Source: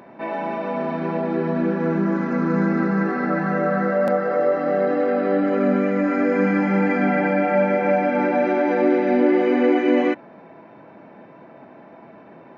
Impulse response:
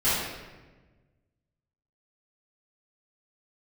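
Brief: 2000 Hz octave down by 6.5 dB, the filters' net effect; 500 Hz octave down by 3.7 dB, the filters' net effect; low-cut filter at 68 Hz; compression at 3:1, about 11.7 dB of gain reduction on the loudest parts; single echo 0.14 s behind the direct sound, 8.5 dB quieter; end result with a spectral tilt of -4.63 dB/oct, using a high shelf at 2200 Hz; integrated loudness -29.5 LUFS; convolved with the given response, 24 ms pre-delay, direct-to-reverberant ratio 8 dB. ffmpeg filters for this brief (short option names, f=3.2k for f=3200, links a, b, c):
-filter_complex "[0:a]highpass=68,equalizer=f=500:t=o:g=-4,equalizer=f=2k:t=o:g=-5,highshelf=f=2.2k:g=-6,acompressor=threshold=-32dB:ratio=3,aecho=1:1:140:0.376,asplit=2[a][b];[1:a]atrim=start_sample=2205,adelay=24[c];[b][c]afir=irnorm=-1:irlink=0,volume=-22.5dB[d];[a][d]amix=inputs=2:normalize=0,volume=1.5dB"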